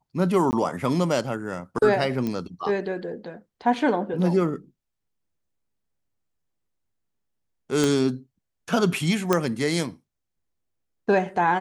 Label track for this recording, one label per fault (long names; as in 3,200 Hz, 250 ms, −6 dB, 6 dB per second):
0.510000	0.530000	drop-out 19 ms
2.270000	2.270000	click −16 dBFS
7.840000	7.840000	click
9.330000	9.330000	click −6 dBFS